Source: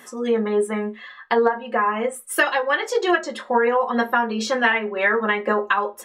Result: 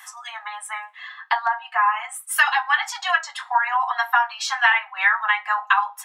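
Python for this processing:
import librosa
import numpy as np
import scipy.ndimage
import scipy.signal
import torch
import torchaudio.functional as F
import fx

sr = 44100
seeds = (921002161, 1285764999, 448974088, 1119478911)

y = scipy.signal.sosfilt(scipy.signal.butter(16, 740.0, 'highpass', fs=sr, output='sos'), x)
y = F.gain(torch.from_numpy(y), 2.5).numpy()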